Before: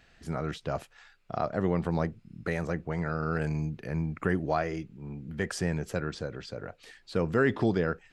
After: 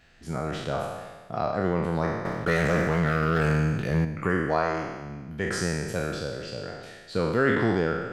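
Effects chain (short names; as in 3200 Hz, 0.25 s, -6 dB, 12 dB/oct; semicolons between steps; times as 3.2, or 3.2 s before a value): spectral trails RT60 1.31 s; 2.25–4.05 sample leveller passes 2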